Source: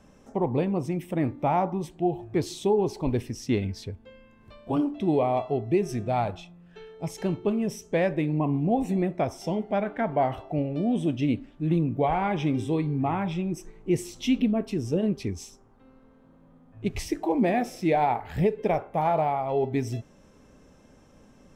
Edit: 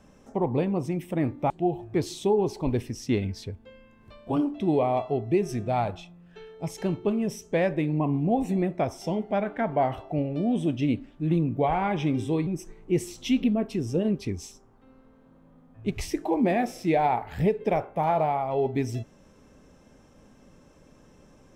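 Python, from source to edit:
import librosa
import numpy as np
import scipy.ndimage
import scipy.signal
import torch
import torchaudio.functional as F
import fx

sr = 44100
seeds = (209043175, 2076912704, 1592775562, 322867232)

y = fx.edit(x, sr, fx.cut(start_s=1.5, length_s=0.4),
    fx.cut(start_s=12.87, length_s=0.58), tone=tone)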